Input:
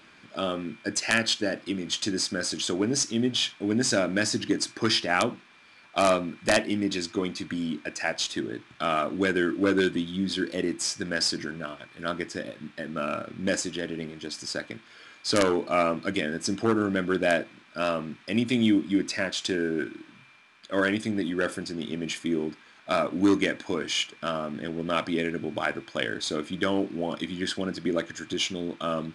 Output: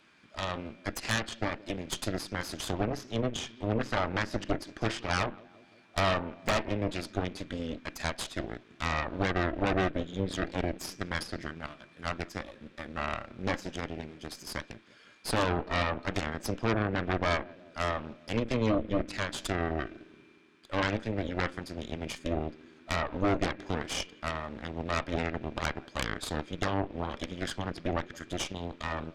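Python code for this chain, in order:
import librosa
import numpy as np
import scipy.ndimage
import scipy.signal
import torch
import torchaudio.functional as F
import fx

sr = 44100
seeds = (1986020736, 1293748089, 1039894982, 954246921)

y = fx.echo_filtered(x, sr, ms=173, feedback_pct=67, hz=1000.0, wet_db=-17.5)
y = fx.env_lowpass_down(y, sr, base_hz=2200.0, full_db=-21.0)
y = fx.cheby_harmonics(y, sr, harmonics=(6,), levels_db=(-7,), full_scale_db=-10.0)
y = F.gain(torch.from_numpy(y), -8.5).numpy()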